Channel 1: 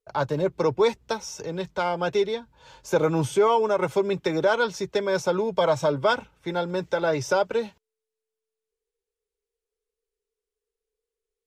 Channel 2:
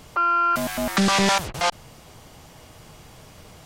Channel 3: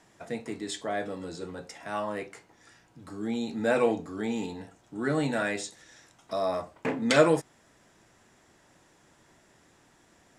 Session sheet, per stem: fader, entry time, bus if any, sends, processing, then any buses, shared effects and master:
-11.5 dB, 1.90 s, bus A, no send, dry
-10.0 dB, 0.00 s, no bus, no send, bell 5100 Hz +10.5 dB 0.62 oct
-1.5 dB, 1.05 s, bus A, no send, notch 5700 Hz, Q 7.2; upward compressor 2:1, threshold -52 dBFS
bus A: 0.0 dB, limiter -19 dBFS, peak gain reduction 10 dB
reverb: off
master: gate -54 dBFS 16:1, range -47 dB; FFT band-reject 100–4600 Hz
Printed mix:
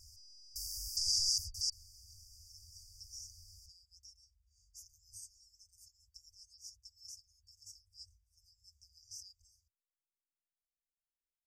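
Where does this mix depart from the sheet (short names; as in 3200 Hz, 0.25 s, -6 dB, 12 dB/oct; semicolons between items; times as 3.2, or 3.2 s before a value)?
stem 3: muted; master: missing gate -54 dBFS 16:1, range -47 dB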